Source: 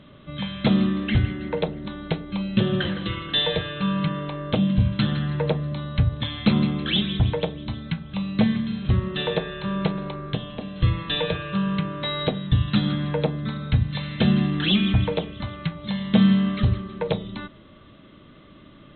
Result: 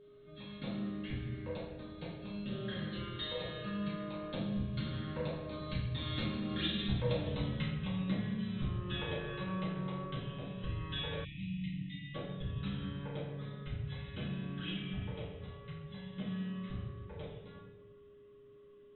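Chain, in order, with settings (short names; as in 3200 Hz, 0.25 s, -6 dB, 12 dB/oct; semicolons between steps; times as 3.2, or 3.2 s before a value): Doppler pass-by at 7.23, 15 m/s, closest 2.9 m; compressor 6:1, threshold -48 dBFS, peak gain reduction 24.5 dB; reverb RT60 1.2 s, pre-delay 4 ms, DRR -9 dB; whine 410 Hz -60 dBFS; spectral delete 11.25–12.15, 310–1800 Hz; gain +4.5 dB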